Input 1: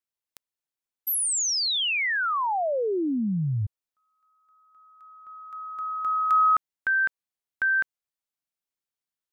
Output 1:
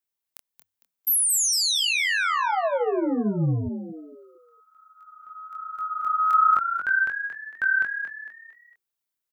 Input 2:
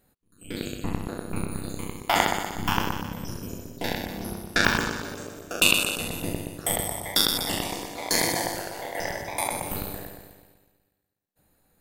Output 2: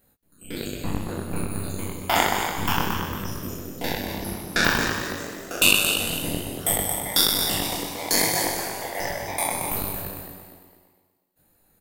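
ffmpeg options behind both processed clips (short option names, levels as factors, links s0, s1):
-filter_complex "[0:a]highshelf=f=12000:g=9.5,flanger=delay=19:depth=6.3:speed=1.2,asplit=5[s0][s1][s2][s3][s4];[s1]adelay=227,afreqshift=90,volume=0.376[s5];[s2]adelay=454,afreqshift=180,volume=0.143[s6];[s3]adelay=681,afreqshift=270,volume=0.0543[s7];[s4]adelay=908,afreqshift=360,volume=0.0207[s8];[s0][s5][s6][s7][s8]amix=inputs=5:normalize=0,volume=1.58"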